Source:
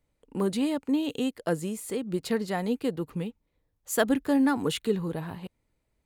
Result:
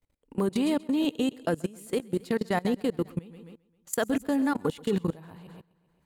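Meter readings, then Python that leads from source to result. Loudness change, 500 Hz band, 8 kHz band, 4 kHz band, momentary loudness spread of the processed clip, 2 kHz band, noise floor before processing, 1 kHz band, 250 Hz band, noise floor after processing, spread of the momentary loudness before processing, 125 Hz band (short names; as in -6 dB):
-0.5 dB, -0.5 dB, -2.5 dB, -2.0 dB, 12 LU, -1.5 dB, -77 dBFS, 0.0 dB, -0.5 dB, -70 dBFS, 12 LU, 0.0 dB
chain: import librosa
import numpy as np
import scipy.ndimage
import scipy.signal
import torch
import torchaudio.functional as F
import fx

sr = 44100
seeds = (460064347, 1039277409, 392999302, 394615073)

p1 = fx.over_compress(x, sr, threshold_db=-28.0, ratio=-1.0)
p2 = x + (p1 * 10.0 ** (1.0 / 20.0))
p3 = fx.echo_feedback(p2, sr, ms=132, feedback_pct=54, wet_db=-13)
p4 = fx.level_steps(p3, sr, step_db=22)
y = p4 * 10.0 ** (-2.5 / 20.0)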